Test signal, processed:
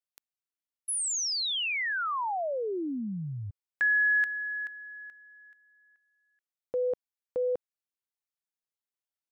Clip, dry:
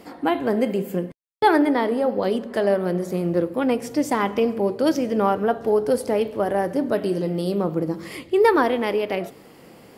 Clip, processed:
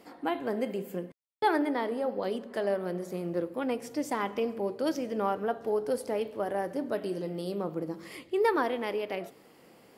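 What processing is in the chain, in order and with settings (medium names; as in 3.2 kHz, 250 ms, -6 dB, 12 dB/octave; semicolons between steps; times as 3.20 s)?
bass shelf 160 Hz -8.5 dB; trim -8.5 dB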